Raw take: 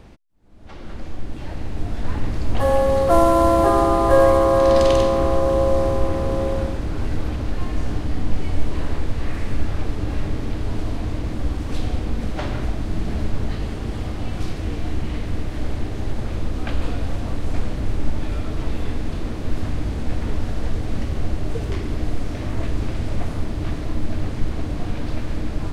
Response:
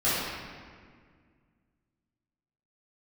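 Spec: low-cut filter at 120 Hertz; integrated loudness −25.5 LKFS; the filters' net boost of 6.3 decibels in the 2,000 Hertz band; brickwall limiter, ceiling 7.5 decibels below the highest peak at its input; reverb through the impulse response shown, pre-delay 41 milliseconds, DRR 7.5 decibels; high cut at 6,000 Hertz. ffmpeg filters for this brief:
-filter_complex "[0:a]highpass=120,lowpass=6000,equalizer=frequency=2000:width_type=o:gain=8,alimiter=limit=-11dB:level=0:latency=1,asplit=2[link_01][link_02];[1:a]atrim=start_sample=2205,adelay=41[link_03];[link_02][link_03]afir=irnorm=-1:irlink=0,volume=-21.5dB[link_04];[link_01][link_04]amix=inputs=2:normalize=0,volume=-1dB"

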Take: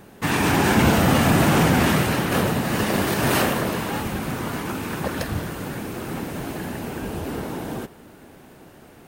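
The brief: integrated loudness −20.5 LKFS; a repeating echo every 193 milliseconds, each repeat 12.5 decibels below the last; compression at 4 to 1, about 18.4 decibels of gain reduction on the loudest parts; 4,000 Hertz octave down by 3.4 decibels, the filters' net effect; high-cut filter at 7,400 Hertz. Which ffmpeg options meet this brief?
ffmpeg -i in.wav -af "lowpass=7400,equalizer=frequency=4000:width_type=o:gain=-4.5,acompressor=threshold=-37dB:ratio=4,aecho=1:1:193|386|579:0.237|0.0569|0.0137,volume=17.5dB" out.wav

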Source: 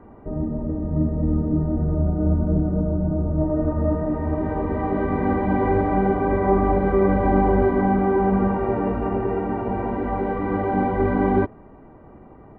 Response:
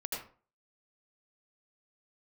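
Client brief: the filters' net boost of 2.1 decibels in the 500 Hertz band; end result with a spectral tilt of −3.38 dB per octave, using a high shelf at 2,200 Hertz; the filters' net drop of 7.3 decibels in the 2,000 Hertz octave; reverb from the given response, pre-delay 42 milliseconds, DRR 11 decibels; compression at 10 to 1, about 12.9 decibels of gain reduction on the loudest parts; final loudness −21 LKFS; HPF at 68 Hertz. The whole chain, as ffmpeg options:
-filter_complex "[0:a]highpass=68,equalizer=frequency=500:width_type=o:gain=3.5,equalizer=frequency=2000:width_type=o:gain=-9,highshelf=frequency=2200:gain=-3,acompressor=threshold=-26dB:ratio=10,asplit=2[link_01][link_02];[1:a]atrim=start_sample=2205,adelay=42[link_03];[link_02][link_03]afir=irnorm=-1:irlink=0,volume=-13dB[link_04];[link_01][link_04]amix=inputs=2:normalize=0,volume=9dB"

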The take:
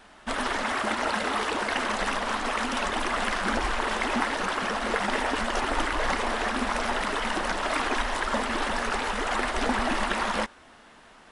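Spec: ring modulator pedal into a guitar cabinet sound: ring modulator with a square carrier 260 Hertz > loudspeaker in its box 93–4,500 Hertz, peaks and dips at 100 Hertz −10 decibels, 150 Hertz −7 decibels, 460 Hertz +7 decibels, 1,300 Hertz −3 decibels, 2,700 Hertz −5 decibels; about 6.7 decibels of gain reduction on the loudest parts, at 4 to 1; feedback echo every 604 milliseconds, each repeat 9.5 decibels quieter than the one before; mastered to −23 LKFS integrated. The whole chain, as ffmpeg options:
ffmpeg -i in.wav -af "acompressor=threshold=-30dB:ratio=4,aecho=1:1:604|1208|1812|2416:0.335|0.111|0.0365|0.012,aeval=exprs='val(0)*sgn(sin(2*PI*260*n/s))':channel_layout=same,highpass=93,equalizer=frequency=100:width_type=q:width=4:gain=-10,equalizer=frequency=150:width_type=q:width=4:gain=-7,equalizer=frequency=460:width_type=q:width=4:gain=7,equalizer=frequency=1300:width_type=q:width=4:gain=-3,equalizer=frequency=2700:width_type=q:width=4:gain=-5,lowpass=frequency=4500:width=0.5412,lowpass=frequency=4500:width=1.3066,volume=9.5dB" out.wav

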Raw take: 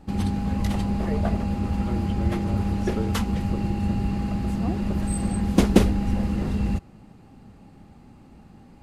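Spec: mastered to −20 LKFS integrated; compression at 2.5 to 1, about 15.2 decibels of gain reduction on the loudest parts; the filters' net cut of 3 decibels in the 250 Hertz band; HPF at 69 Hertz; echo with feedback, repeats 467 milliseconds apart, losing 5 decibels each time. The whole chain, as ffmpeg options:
ffmpeg -i in.wav -af "highpass=69,equalizer=frequency=250:width_type=o:gain=-4,acompressor=threshold=-38dB:ratio=2.5,aecho=1:1:467|934|1401|1868|2335|2802|3269:0.562|0.315|0.176|0.0988|0.0553|0.031|0.0173,volume=17.5dB" out.wav

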